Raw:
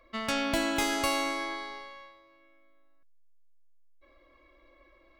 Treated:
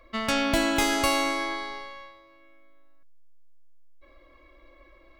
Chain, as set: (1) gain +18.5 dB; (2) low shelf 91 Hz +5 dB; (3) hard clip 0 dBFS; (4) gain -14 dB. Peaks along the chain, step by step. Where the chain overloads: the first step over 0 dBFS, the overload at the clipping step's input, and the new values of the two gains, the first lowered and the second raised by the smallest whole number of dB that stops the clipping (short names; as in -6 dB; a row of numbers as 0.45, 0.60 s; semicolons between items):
+3.0, +3.5, 0.0, -14.0 dBFS; step 1, 3.5 dB; step 1 +14.5 dB, step 4 -10 dB